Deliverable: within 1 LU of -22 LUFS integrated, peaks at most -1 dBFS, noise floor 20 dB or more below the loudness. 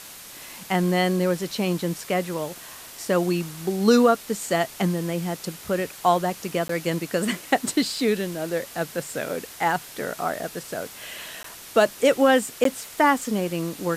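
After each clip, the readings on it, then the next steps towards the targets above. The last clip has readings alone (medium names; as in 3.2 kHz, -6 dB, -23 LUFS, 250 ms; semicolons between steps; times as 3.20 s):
dropouts 3; longest dropout 13 ms; noise floor -42 dBFS; noise floor target -44 dBFS; loudness -24.0 LUFS; peak level -4.0 dBFS; loudness target -22.0 LUFS
-> interpolate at 6.68/11.43/12.64 s, 13 ms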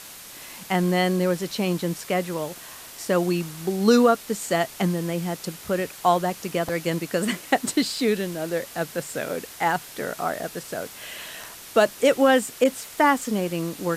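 dropouts 0; noise floor -42 dBFS; noise floor target -44 dBFS
-> noise reduction 6 dB, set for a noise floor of -42 dBFS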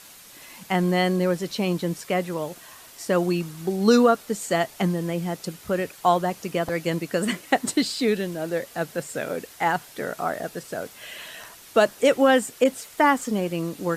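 noise floor -47 dBFS; loudness -24.0 LUFS; peak level -4.5 dBFS; loudness target -22.0 LUFS
-> trim +2 dB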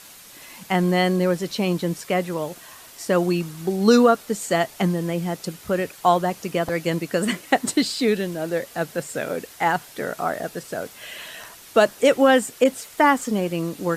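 loudness -22.0 LUFS; peak level -2.5 dBFS; noise floor -45 dBFS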